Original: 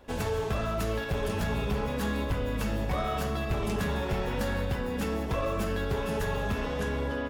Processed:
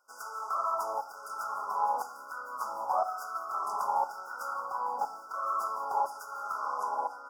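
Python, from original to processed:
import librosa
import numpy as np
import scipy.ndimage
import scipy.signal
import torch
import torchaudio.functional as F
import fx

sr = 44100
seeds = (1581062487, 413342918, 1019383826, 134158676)

y = fx.median_filter(x, sr, points=5, at=(4.53, 5.47))
y = fx.filter_lfo_highpass(y, sr, shape='saw_down', hz=0.99, low_hz=820.0, high_hz=1900.0, q=5.0)
y = fx.brickwall_bandstop(y, sr, low_hz=1500.0, high_hz=4700.0)
y = fx.rev_fdn(y, sr, rt60_s=0.7, lf_ratio=1.35, hf_ratio=0.35, size_ms=53.0, drr_db=11.0)
y = fx.dynamic_eq(y, sr, hz=760.0, q=2.0, threshold_db=-45.0, ratio=4.0, max_db=7)
y = y * 10.0 ** (-5.0 / 20.0)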